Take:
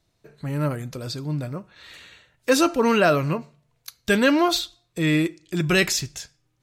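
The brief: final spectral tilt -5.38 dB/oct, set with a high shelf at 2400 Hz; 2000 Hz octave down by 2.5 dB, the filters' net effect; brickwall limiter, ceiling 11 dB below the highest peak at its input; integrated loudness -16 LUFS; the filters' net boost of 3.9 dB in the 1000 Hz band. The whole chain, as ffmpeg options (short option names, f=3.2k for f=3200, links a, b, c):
-af "equalizer=f=1k:t=o:g=7.5,equalizer=f=2k:t=o:g=-3.5,highshelf=f=2.4k:g=-5.5,volume=12dB,alimiter=limit=-5dB:level=0:latency=1"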